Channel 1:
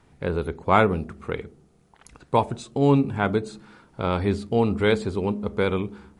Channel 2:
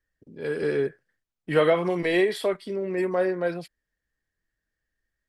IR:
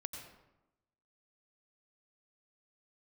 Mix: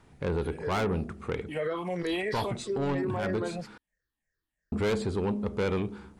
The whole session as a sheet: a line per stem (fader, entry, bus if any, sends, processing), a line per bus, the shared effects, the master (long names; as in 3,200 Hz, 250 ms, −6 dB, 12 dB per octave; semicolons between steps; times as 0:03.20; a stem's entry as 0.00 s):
−0.5 dB, 0.00 s, muted 0:03.78–0:04.72, no send, soft clipping −21.5 dBFS, distortion −7 dB
0:01.36 −14 dB → 0:02.11 −5 dB, 0.00 s, no send, rippled gain that drifts along the octave scale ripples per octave 0.56, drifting −3 Hz, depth 14 dB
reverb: not used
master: brickwall limiter −23 dBFS, peak gain reduction 8 dB